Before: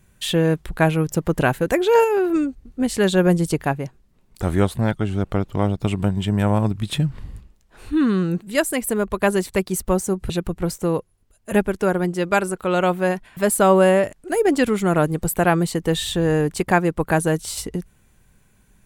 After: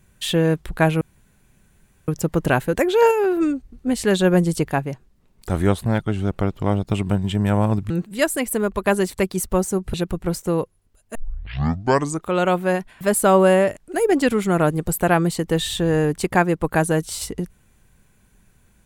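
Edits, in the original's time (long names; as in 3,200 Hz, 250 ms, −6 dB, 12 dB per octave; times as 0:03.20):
0:01.01: splice in room tone 1.07 s
0:06.83–0:08.26: remove
0:11.51: tape start 1.17 s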